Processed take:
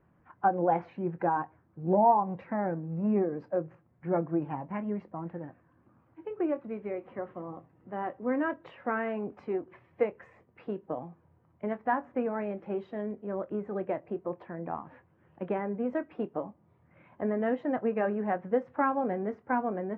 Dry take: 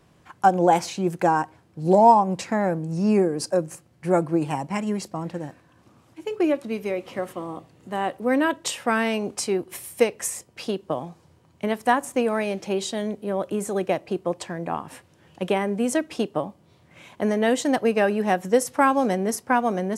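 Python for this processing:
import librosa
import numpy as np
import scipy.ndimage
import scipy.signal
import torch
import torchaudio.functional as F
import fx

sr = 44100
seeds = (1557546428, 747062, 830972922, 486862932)

y = fx.spec_quant(x, sr, step_db=15)
y = scipy.signal.sosfilt(scipy.signal.butter(4, 1900.0, 'lowpass', fs=sr, output='sos'), y)
y = fx.doubler(y, sr, ms=24.0, db=-13)
y = F.gain(torch.from_numpy(y), -8.0).numpy()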